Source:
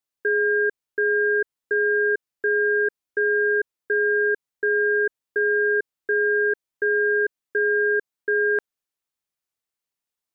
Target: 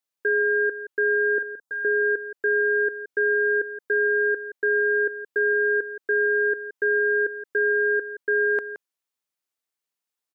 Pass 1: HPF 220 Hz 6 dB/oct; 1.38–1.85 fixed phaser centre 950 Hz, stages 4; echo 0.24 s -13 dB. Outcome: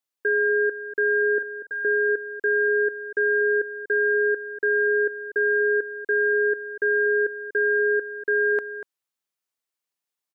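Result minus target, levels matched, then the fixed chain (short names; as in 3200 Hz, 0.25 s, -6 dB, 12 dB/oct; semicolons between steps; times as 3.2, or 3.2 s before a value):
echo 69 ms late
HPF 220 Hz 6 dB/oct; 1.38–1.85 fixed phaser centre 950 Hz, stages 4; echo 0.171 s -13 dB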